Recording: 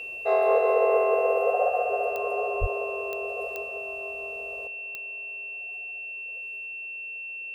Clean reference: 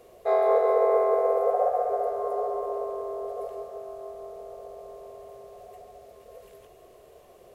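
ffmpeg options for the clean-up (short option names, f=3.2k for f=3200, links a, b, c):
-filter_complex "[0:a]adeclick=t=4,bandreject=f=2.7k:w=30,asplit=3[a][b][c];[a]afade=t=out:st=2.6:d=0.02[d];[b]highpass=f=140:w=0.5412,highpass=f=140:w=1.3066,afade=t=in:st=2.6:d=0.02,afade=t=out:st=2.72:d=0.02[e];[c]afade=t=in:st=2.72:d=0.02[f];[d][e][f]amix=inputs=3:normalize=0,asetnsamples=n=441:p=0,asendcmd='4.67 volume volume 11.5dB',volume=0dB"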